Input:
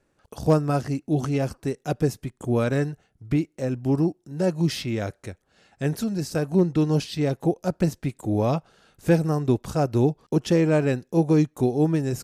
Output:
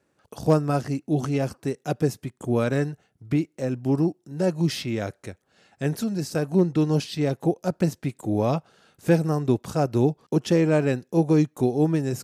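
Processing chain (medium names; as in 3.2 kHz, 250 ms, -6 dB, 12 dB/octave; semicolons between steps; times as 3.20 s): high-pass 96 Hz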